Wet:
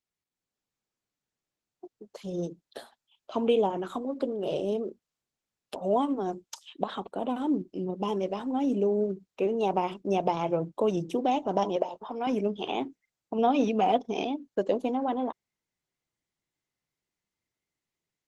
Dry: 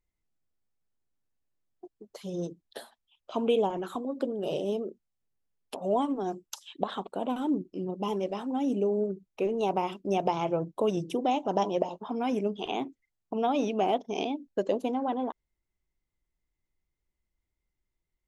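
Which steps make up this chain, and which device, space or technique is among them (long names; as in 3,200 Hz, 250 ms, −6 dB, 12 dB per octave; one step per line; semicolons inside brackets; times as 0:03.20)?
low-pass filter 9,500 Hz 12 dB per octave
0:03.98–0:04.63: dynamic equaliser 200 Hz, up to −3 dB, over −46 dBFS, Q 3
0:11.76–0:12.27: bass and treble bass −15 dB, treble −2 dB
0:13.38–0:14.12: comb filter 4.1 ms, depth 59%
video call (high-pass filter 110 Hz 24 dB per octave; automatic gain control gain up to 9 dB; level −7.5 dB; Opus 16 kbit/s 48,000 Hz)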